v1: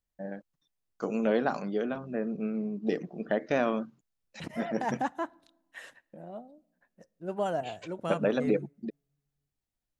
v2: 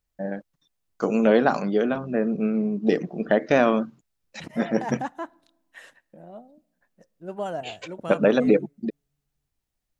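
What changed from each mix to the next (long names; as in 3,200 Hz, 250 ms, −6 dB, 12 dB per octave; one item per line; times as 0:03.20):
first voice +8.5 dB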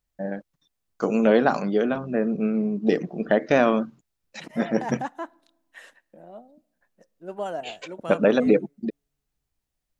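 second voice: add high-pass filter 220 Hz 12 dB per octave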